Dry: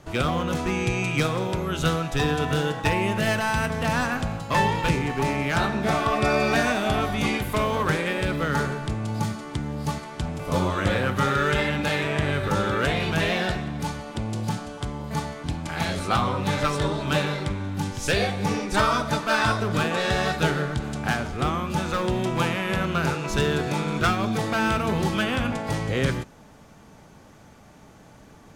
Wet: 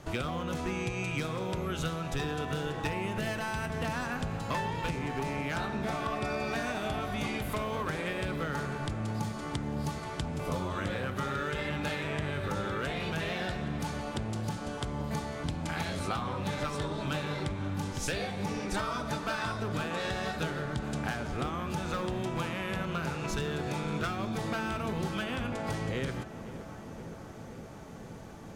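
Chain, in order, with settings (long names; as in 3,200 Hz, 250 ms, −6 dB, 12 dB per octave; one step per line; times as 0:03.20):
downward compressor 6 to 1, threshold −31 dBFS, peak gain reduction 14 dB
feedback echo with a low-pass in the loop 519 ms, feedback 85%, low-pass 2,100 Hz, level −14 dB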